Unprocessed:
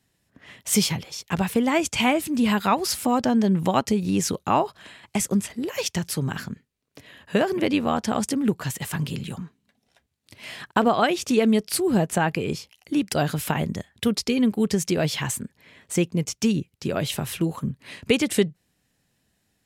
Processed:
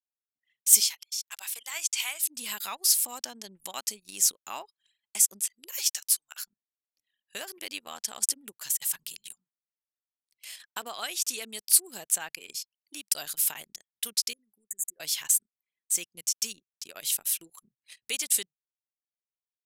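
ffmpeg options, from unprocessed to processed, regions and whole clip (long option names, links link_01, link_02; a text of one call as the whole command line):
ffmpeg -i in.wav -filter_complex "[0:a]asettb=1/sr,asplit=3[link_01][link_02][link_03];[link_01]atrim=end=0.804[link_04];[link_02]atrim=start=0.8:end=2.23,asetpts=PTS-STARTPTS,afade=type=in:duration=0.004:curve=qsin,afade=type=out:start_time=1.426:duration=0.004:curve=qsin,acrossover=split=7400[link_05][link_06];[link_06]acompressor=threshold=-40dB:ratio=4:attack=1:release=60[link_07];[link_05][link_07]amix=inputs=2:normalize=0,highpass=870[link_08];[link_03]atrim=start=2.226[link_09];[link_04][link_08]acrossfade=duration=0.004:curve1=hsin:curve2=qsin[link_10];[link_10][link_09]acrossfade=duration=0.004:curve1=qsin:curve2=hsin,asettb=1/sr,asplit=3[link_11][link_12][link_13];[link_11]atrim=end=5.794[link_14];[link_12]atrim=start=5.79:end=6.43,asetpts=PTS-STARTPTS,afade=type=in:duration=0.004:curve=qsin,afade=type=out:start_time=0.636:duration=0.004:curve=qsin,highpass=860,afreqshift=-120,asplit=2[link_15][link_16];[link_16]adelay=13,volume=-10dB[link_17];[link_15][link_17]amix=inputs=2:normalize=0,atrim=end_sample=28224[link_18];[link_13]atrim=start=6.426[link_19];[link_14][link_18]acrossfade=duration=0.004:curve1=hsin:curve2=qsin[link_20];[link_20][link_19]acrossfade=duration=0.004:curve1=qsin:curve2=hsin,asettb=1/sr,asplit=3[link_21][link_22][link_23];[link_21]atrim=end=14.334[link_24];[link_22]atrim=start=14.33:end=15,asetpts=PTS-STARTPTS,afade=type=in:duration=0.004:curve=qsin,afade=type=out:start_time=0.666:duration=0.004:curve=qsin,acompressor=threshold=-27dB:ratio=16:attack=3.2:release=140:knee=1:detection=peak,asuperstop=centerf=3800:order=20:qfactor=0.82[link_25];[link_23]atrim=start=14.996[link_26];[link_24][link_25]acrossfade=duration=0.004:curve1=hsin:curve2=qsin[link_27];[link_27][link_26]acrossfade=duration=0.004:curve1=qsin:curve2=hsin,aderivative,anlmdn=0.0398,bass=frequency=250:gain=-2,treble=frequency=4000:gain=6" out.wav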